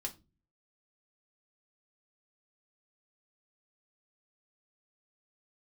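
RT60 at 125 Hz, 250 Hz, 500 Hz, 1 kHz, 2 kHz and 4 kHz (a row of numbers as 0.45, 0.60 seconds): 0.65, 0.55, 0.35, 0.25, 0.20, 0.20 seconds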